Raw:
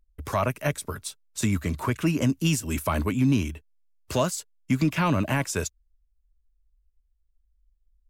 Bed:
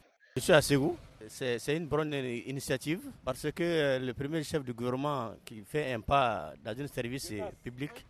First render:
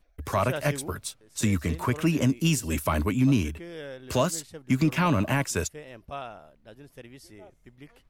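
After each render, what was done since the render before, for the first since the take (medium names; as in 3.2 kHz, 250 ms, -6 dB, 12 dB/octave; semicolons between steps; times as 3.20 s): add bed -10.5 dB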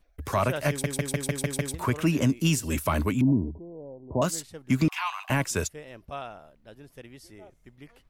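0.69 s: stutter in place 0.15 s, 7 plays; 3.21–4.22 s: rippled Chebyshev low-pass 1 kHz, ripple 3 dB; 4.88–5.30 s: rippled Chebyshev high-pass 730 Hz, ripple 6 dB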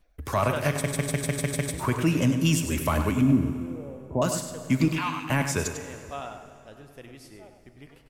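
echo from a far wall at 17 m, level -8 dB; plate-style reverb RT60 2.6 s, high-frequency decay 0.85×, DRR 9.5 dB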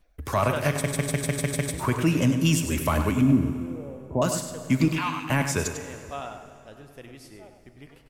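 trim +1 dB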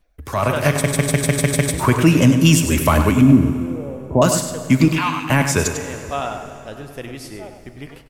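level rider gain up to 12.5 dB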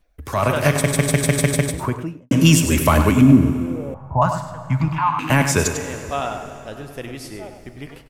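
1.42–2.31 s: studio fade out; 3.94–5.19 s: FFT filter 140 Hz 0 dB, 250 Hz -15 dB, 440 Hz -20 dB, 860 Hz +7 dB, 2.5 kHz -12 dB, 9.9 kHz -22 dB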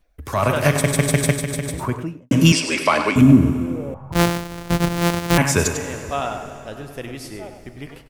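1.32–1.89 s: compression 3:1, threshold -22 dBFS; 2.52–3.16 s: cabinet simulation 380–8200 Hz, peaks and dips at 2.3 kHz +6 dB, 4.8 kHz +10 dB, 6.9 kHz -9 dB; 4.12–5.38 s: sorted samples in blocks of 256 samples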